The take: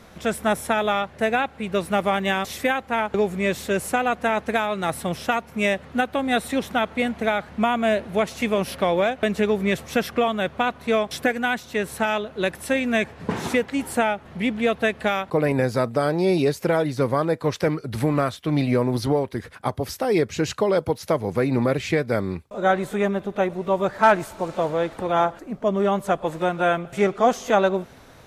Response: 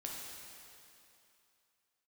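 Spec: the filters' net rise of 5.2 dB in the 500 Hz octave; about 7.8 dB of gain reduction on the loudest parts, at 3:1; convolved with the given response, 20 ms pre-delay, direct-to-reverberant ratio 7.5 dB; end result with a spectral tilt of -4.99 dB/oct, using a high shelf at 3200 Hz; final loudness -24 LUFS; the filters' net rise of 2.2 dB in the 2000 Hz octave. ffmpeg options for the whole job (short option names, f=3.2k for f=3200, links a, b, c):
-filter_complex "[0:a]equalizer=f=500:t=o:g=6.5,equalizer=f=2k:t=o:g=5,highshelf=f=3.2k:g=-8,acompressor=threshold=-21dB:ratio=3,asplit=2[a][b];[1:a]atrim=start_sample=2205,adelay=20[c];[b][c]afir=irnorm=-1:irlink=0,volume=-7dB[d];[a][d]amix=inputs=2:normalize=0,volume=0.5dB"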